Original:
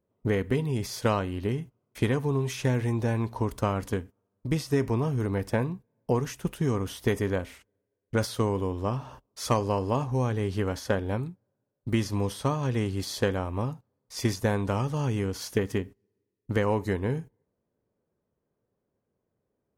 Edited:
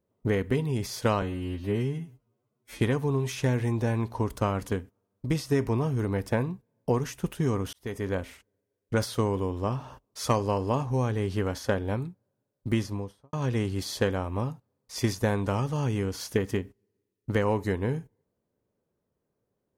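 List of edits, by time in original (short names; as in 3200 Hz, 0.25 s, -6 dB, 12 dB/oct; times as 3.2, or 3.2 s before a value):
1.22–2.01 stretch 2×
6.94–7.41 fade in
11.88–12.54 studio fade out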